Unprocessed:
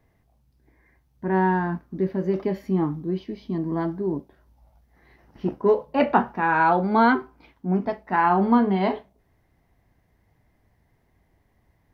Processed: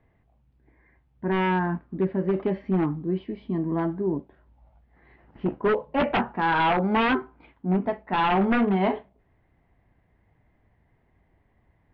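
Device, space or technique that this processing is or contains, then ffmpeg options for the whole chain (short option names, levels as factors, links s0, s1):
synthesiser wavefolder: -af "aeval=exprs='0.158*(abs(mod(val(0)/0.158+3,4)-2)-1)':c=same,lowpass=f=3100:w=0.5412,lowpass=f=3100:w=1.3066"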